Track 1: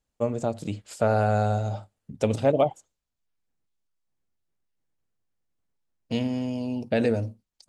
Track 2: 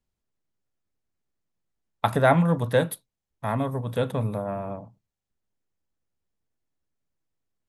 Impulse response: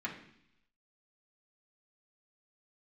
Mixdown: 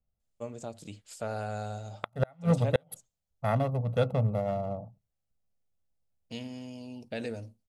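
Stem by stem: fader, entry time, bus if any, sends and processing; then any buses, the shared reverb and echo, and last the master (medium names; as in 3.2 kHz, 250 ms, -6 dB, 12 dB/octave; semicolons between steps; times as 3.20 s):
-13.5 dB, 0.20 s, no send, treble shelf 2.3 kHz +10 dB
-2.0 dB, 0.00 s, no send, local Wiener filter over 25 samples; comb 1.5 ms, depth 64%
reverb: none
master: inverted gate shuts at -13 dBFS, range -38 dB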